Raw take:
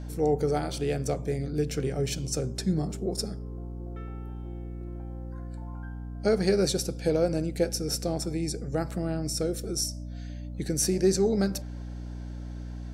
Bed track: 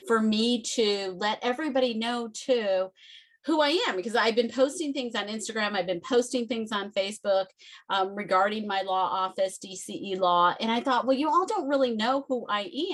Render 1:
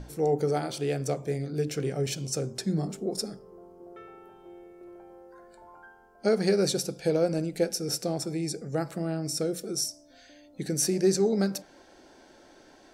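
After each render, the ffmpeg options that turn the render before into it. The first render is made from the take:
ffmpeg -i in.wav -af "bandreject=frequency=60:width_type=h:width=6,bandreject=frequency=120:width_type=h:width=6,bandreject=frequency=180:width_type=h:width=6,bandreject=frequency=240:width_type=h:width=6,bandreject=frequency=300:width_type=h:width=6" out.wav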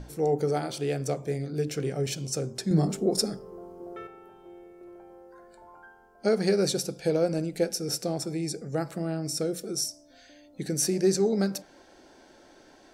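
ffmpeg -i in.wav -filter_complex "[0:a]asplit=3[link_01][link_02][link_03];[link_01]atrim=end=2.712[link_04];[link_02]atrim=start=2.708:end=4.072,asetpts=PTS-STARTPTS,volume=6dB[link_05];[link_03]atrim=start=4.068[link_06];[link_04][link_05]acrossfade=duration=0.004:curve1=hsin:curve2=hsin[link_07];[link_07][link_06]acrossfade=duration=0.004:curve1=hsin:curve2=hsin" out.wav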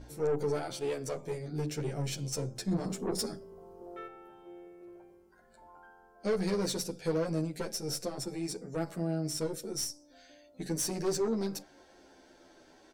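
ffmpeg -i in.wav -filter_complex "[0:a]aeval=exprs='(tanh(14.1*val(0)+0.35)-tanh(0.35))/14.1':channel_layout=same,asplit=2[link_01][link_02];[link_02]adelay=10.7,afreqshift=-0.52[link_03];[link_01][link_03]amix=inputs=2:normalize=1" out.wav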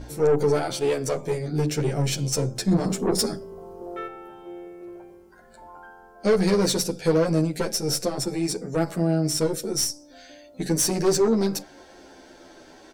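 ffmpeg -i in.wav -af "volume=10.5dB" out.wav

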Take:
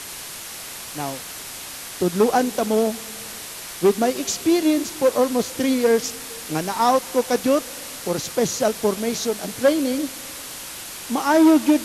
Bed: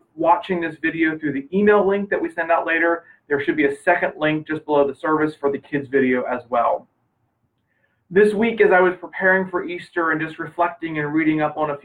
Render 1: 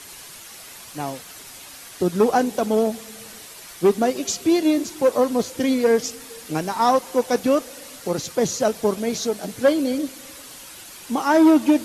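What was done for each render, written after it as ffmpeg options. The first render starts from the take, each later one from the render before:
ffmpeg -i in.wav -af "afftdn=noise_reduction=8:noise_floor=-35" out.wav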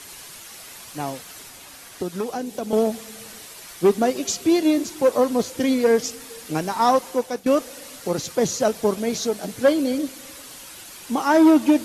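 ffmpeg -i in.wav -filter_complex "[0:a]asettb=1/sr,asplit=3[link_01][link_02][link_03];[link_01]atrim=end=1.464[link_04];[link_02]atrim=start=1.46:end=2.73,asetpts=PTS-STARTPTS,afade=type=in:duration=0.004:curve=qsin,afade=type=out:start_time=1.266:duration=0.004:curve=qsin,acrossover=split=560|2100[link_05][link_06][link_07];[link_05]acompressor=threshold=-28dB:ratio=4[link_08];[link_06]acompressor=threshold=-36dB:ratio=4[link_09];[link_07]acompressor=threshold=-41dB:ratio=4[link_10];[link_08][link_09][link_10]amix=inputs=3:normalize=0[link_11];[link_03]atrim=start=2.726[link_12];[link_04][link_11]acrossfade=duration=0.004:curve1=hsin:curve2=qsin[link_13];[link_13][link_12]acrossfade=duration=0.004:curve1=qsin:curve2=hsin,asplit=2[link_14][link_15];[link_14]atrim=end=7.46,asetpts=PTS-STARTPTS,afade=type=out:start_time=7.06:duration=0.4:silence=0.177828[link_16];[link_15]atrim=start=7.46,asetpts=PTS-STARTPTS,afade=type=in:duration=0.004:curve=hsin:silence=0.177828[link_17];[link_16][link_17]concat=n=2:v=0:a=1" out.wav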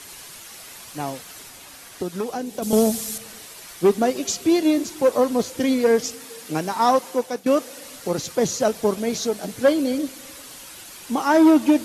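ffmpeg -i in.wav -filter_complex "[0:a]asettb=1/sr,asplit=3[link_01][link_02][link_03];[link_01]atrim=end=2.624[link_04];[link_02]atrim=start=2.62:end=3.18,asetpts=PTS-STARTPTS,afade=type=in:duration=0.004:curve=qsin,afade=type=out:start_time=0.556:duration=0.004:curve=qsin,bass=frequency=250:gain=8,treble=frequency=4000:gain=13[link_05];[link_03]atrim=start=3.176[link_06];[link_04][link_05]acrossfade=duration=0.004:curve1=hsin:curve2=qsin[link_07];[link_07][link_06]acrossfade=duration=0.004:curve1=qsin:curve2=hsin,asettb=1/sr,asplit=3[link_08][link_09][link_10];[link_08]atrim=end=6.144[link_11];[link_09]atrim=start=6.14:end=7.84,asetpts=PTS-STARTPTS,afade=type=in:duration=0.004:curve=qsin,afade=type=out:start_time=1.696:duration=0.004:curve=qsin,highpass=110[link_12];[link_10]atrim=start=7.836[link_13];[link_11][link_12]acrossfade=duration=0.004:curve1=hsin:curve2=qsin[link_14];[link_14][link_13]acrossfade=duration=0.004:curve1=qsin:curve2=hsin" out.wav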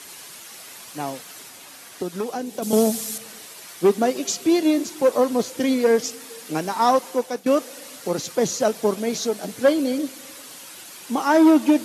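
ffmpeg -i in.wav -af "highpass=150" out.wav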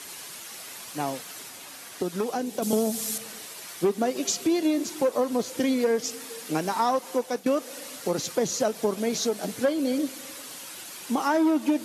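ffmpeg -i in.wav -af "acompressor=threshold=-22dB:ratio=3" out.wav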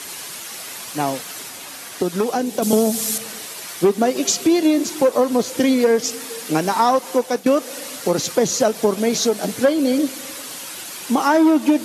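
ffmpeg -i in.wav -af "volume=8dB" out.wav

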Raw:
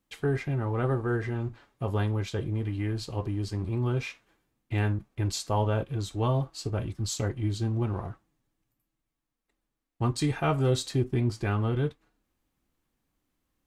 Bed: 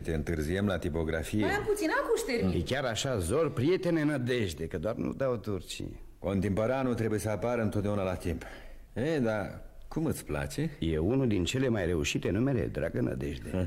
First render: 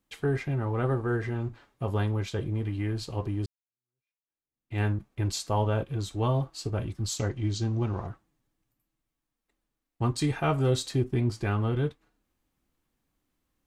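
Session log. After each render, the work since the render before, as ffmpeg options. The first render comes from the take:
ffmpeg -i in.wav -filter_complex "[0:a]asettb=1/sr,asplit=3[link_01][link_02][link_03];[link_01]atrim=end=7.194[link_04];[link_02]atrim=start=7.19:end=8.07,asetpts=PTS-STARTPTS,afade=type=in:duration=0.004:curve=qsin,afade=type=out:start_time=0.876:duration=0.004:curve=qsin,lowpass=frequency=6200:width_type=q:width=2.3[link_05];[link_03]atrim=start=8.066[link_06];[link_04][link_05]acrossfade=duration=0.004:curve1=hsin:curve2=qsin[link_07];[link_07][link_06]acrossfade=duration=0.004:curve1=qsin:curve2=hsin,asplit=2[link_08][link_09];[link_08]atrim=end=3.46,asetpts=PTS-STARTPTS,afade=type=out:start_time=3.456:duration=0.004:curve=hsin[link_10];[link_09]atrim=start=3.46,asetpts=PTS-STARTPTS,afade=type=in:duration=1.35:curve=exp[link_11];[link_10][link_11]concat=n=2:v=0:a=1" out.wav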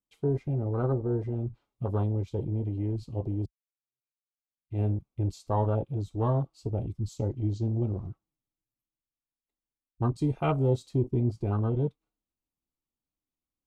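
ffmpeg -i in.wav -af "afwtdn=0.0282,equalizer=frequency=1700:width_type=o:width=0.36:gain=-12.5" out.wav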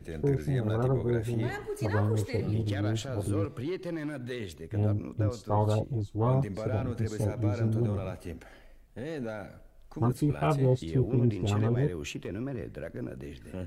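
ffmpeg -i in.wav -i bed.wav -filter_complex "[1:a]volume=-7dB[link_01];[0:a][link_01]amix=inputs=2:normalize=0" out.wav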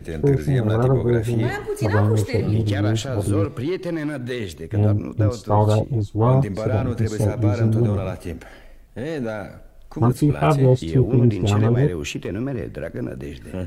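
ffmpeg -i in.wav -af "volume=9.5dB" out.wav

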